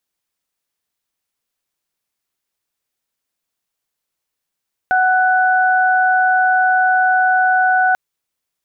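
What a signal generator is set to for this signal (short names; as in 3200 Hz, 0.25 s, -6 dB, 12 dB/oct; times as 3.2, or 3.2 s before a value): steady additive tone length 3.04 s, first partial 744 Hz, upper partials -1.5 dB, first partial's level -13 dB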